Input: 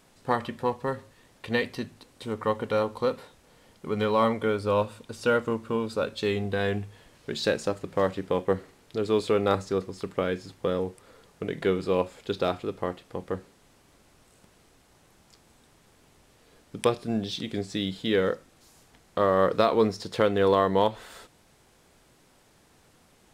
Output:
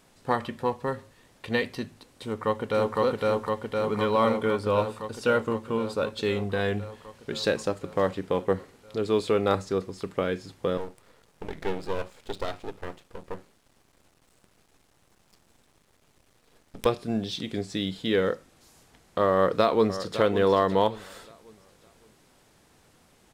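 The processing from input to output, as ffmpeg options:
-filter_complex "[0:a]asplit=2[a][b];[b]afade=t=in:st=2.23:d=0.01,afade=t=out:st=2.98:d=0.01,aecho=0:1:510|1020|1530|2040|2550|3060|3570|4080|4590|5100|5610|6120:1|0.75|0.5625|0.421875|0.316406|0.237305|0.177979|0.133484|0.100113|0.0750847|0.0563135|0.0422351[c];[a][c]amix=inputs=2:normalize=0,asettb=1/sr,asplit=3[d][e][f];[d]atrim=end=10.774[g];[e]atrim=start=10.77:end=16.86,asetpts=PTS-STARTPTS,afade=t=in:d=0.004:c=qsin,afade=t=out:st=6.086:d=0.004:c=qsin,aeval=exprs='max(val(0),0)':c=same[h];[f]atrim=start=16.856[i];[g][h]acrossfade=d=0.004:c1=hsin:c2=qsin[j];[j][i]acrossfade=d=0.004:c1=qsin:c2=hsin,asplit=2[k][l];[l]afade=t=in:st=19.33:d=0.01,afade=t=out:st=20.19:d=0.01,aecho=0:1:560|1120|1680|2240:0.251189|0.087916|0.0307706|0.0107697[m];[k][m]amix=inputs=2:normalize=0"

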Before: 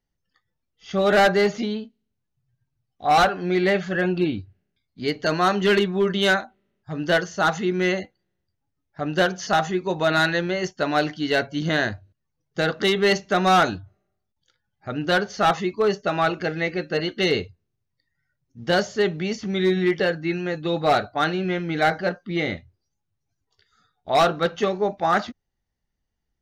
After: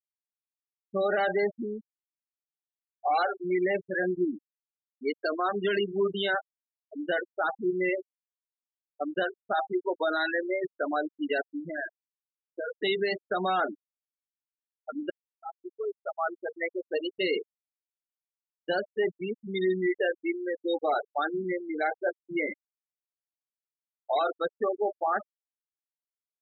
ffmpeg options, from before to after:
-filter_complex "[0:a]asplit=3[a][b][c];[a]afade=t=out:st=11.41:d=0.02[d];[b]acompressor=threshold=-23dB:ratio=5:attack=3.2:release=140:knee=1:detection=peak,afade=t=in:st=11.41:d=0.02,afade=t=out:st=12.71:d=0.02[e];[c]afade=t=in:st=12.71:d=0.02[f];[d][e][f]amix=inputs=3:normalize=0,asplit=2[g][h];[g]atrim=end=15.1,asetpts=PTS-STARTPTS,afade=t=out:st=15.096:d=0.004:c=hsin[i];[h]atrim=start=15.1,asetpts=PTS-STARTPTS,afade=t=in:d=2.09[j];[i][j]concat=n=2:v=0:a=1,highpass=300,afftfilt=real='re*gte(hypot(re,im),0.158)':imag='im*gte(hypot(re,im),0.158)':win_size=1024:overlap=0.75,alimiter=limit=-17dB:level=0:latency=1:release=45,volume=-2dB"

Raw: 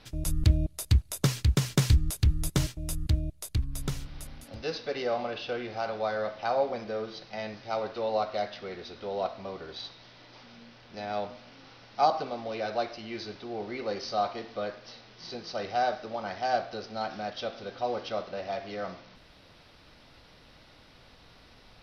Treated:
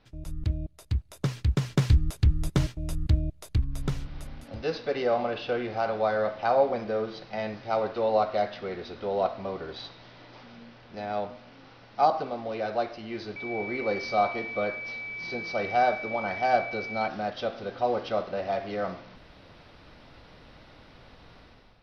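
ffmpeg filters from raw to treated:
-filter_complex "[0:a]asettb=1/sr,asplit=3[a][b][c];[a]atrim=end=13.364[d];[b]atrim=start=13.36:end=17.08,asetpts=PTS-STARTPTS,afade=t=in:d=0.004:c=qsin,afade=t=out:st=3.716:d=0.004:c=qsin,aeval=exprs='val(0)+0.0158*sin(2*PI*2300*n/s)':c=same[e];[c]atrim=start=17.076[f];[d][e]acrossfade=d=0.004:c1=hsin:c2=qsin[g];[g][f]acrossfade=d=0.004:c1=qsin:c2=hsin,lowpass=f=2.2k:p=1,dynaudnorm=f=930:g=3:m=12.5dB,volume=-7dB"

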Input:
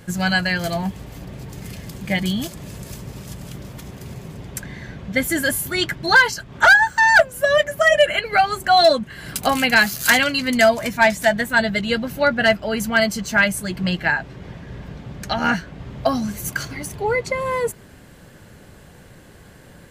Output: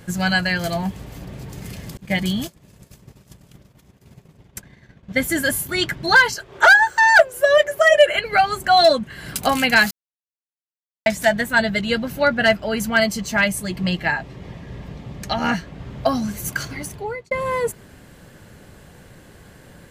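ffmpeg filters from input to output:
-filter_complex "[0:a]asettb=1/sr,asplit=3[a][b][c];[a]atrim=end=1.974[d];[b]atrim=start=1.97:end=5.69,asetpts=PTS-STARTPTS,afade=t=in:d=0.004:c=qsin,afade=t=out:st=3.716:d=0.004:c=qsin,agate=range=-33dB:threshold=-25dB:ratio=3:release=100:detection=peak[e];[c]atrim=start=5.686[f];[d][e]acrossfade=d=0.004:c1=hsin:c2=qsin[g];[g][f]acrossfade=d=0.004:c1=qsin:c2=hsin,asettb=1/sr,asplit=3[h][i][j];[h]atrim=end=6.354[k];[i]atrim=start=6.35:end=8.15,asetpts=PTS-STARTPTS,afade=t=in:d=0.004:c=qsin,afade=t=out:st=1.796:d=0.004:c=qsin,lowshelf=f=300:t=q:w=3:g=-8[l];[j]atrim=start=8.146[m];[k][l]acrossfade=d=0.004:c1=hsin:c2=qsin[n];[n][m]acrossfade=d=0.004:c1=qsin:c2=hsin,asettb=1/sr,asplit=3[o][p][q];[o]atrim=end=13.044[r];[p]atrim=start=13.04:end=15.75,asetpts=PTS-STARTPTS,afade=t=in:d=0.004:c=qsin,afade=t=out:st=2.706:d=0.004:c=qsin,bandreject=f=1.5k:w=6.4[s];[q]atrim=start=15.746[t];[r][s]acrossfade=d=0.004:c1=hsin:c2=qsin[u];[u][t]acrossfade=d=0.004:c1=qsin:c2=hsin,asplit=4[v][w][x][y];[v]atrim=end=9.91,asetpts=PTS-STARTPTS,afade=t=out:st=9.906:d=0.004:c=hsin[z];[w]atrim=start=9.91:end=11.06,asetpts=PTS-STARTPTS,volume=0[aa];[x]atrim=start=11.06:end=17.31,asetpts=PTS-STARTPTS,afade=t=in:d=0.004:c=hsin,afade=t=out:st=5.75:d=0.5[ab];[y]atrim=start=17.31,asetpts=PTS-STARTPTS,afade=t=in:d=0.004:c=hsin[ac];[z][aa][ab][ac]concat=n=4:v=0:a=1"

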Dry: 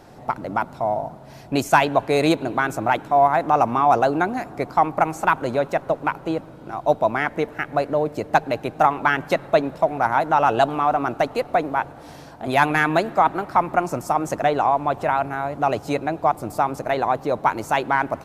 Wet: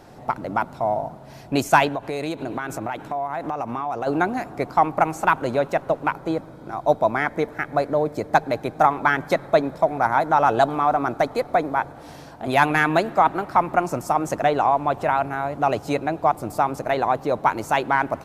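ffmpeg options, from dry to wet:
-filter_complex "[0:a]asplit=3[a][b][c];[a]afade=t=out:st=1.88:d=0.02[d];[b]acompressor=threshold=-24dB:ratio=5:attack=3.2:release=140:knee=1:detection=peak,afade=t=in:st=1.88:d=0.02,afade=t=out:st=4.06:d=0.02[e];[c]afade=t=in:st=4.06:d=0.02[f];[d][e][f]amix=inputs=3:normalize=0,asettb=1/sr,asplit=3[g][h][i];[g]atrim=end=6.134[j];[h]atrim=start=6.13:end=11.95,asetpts=PTS-STARTPTS,afade=t=in:d=0.004:c=qsin,afade=t=out:st=5.816:d=0.004:c=qsin,bandreject=f=2.8k:w=5.2[k];[i]atrim=start=11.946[l];[j][k]acrossfade=d=0.004:c1=hsin:c2=qsin[m];[m][l]acrossfade=d=0.004:c1=qsin:c2=hsin"

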